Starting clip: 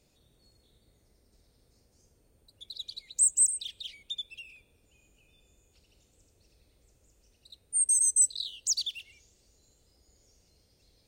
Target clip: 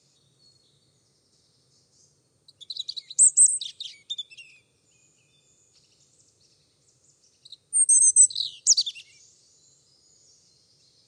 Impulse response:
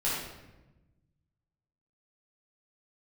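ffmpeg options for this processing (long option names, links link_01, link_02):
-filter_complex "[0:a]asettb=1/sr,asplit=3[link_01][link_02][link_03];[link_01]atrim=end=7.964[link_04];[link_02]atrim=start=7.96:end=8.53,asetpts=PTS-STARTPTS,afade=type=in:duration=0.004:curve=qsin,afade=type=out:start_time=0.566:duration=0.004:curve=qsin,lowshelf=frequency=170:gain=12[link_05];[link_03]atrim=start=8.526[link_06];[link_04][link_05]acrossfade=duration=0.004:curve1=hsin:curve2=qsin[link_07];[link_07][link_06]acrossfade=duration=0.004:curve1=qsin:curve2=hsin,aexciter=amount=5:drive=1.3:freq=3700,highpass=frequency=100:width=0.5412,highpass=frequency=100:width=1.3066,equalizer=frequency=140:width_type=q:width=4:gain=8,equalizer=frequency=220:width_type=q:width=4:gain=-4,equalizer=frequency=670:width_type=q:width=4:gain=-4,equalizer=frequency=1200:width_type=q:width=4:gain=6,equalizer=frequency=3400:width_type=q:width=4:gain=-4,lowpass=frequency=7400:width=0.5412,lowpass=frequency=7400:width=1.3066"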